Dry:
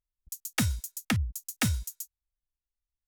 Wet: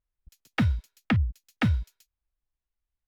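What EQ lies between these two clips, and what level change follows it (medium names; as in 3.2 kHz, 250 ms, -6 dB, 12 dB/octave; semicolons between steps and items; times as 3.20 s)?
distance through air 380 m; +5.0 dB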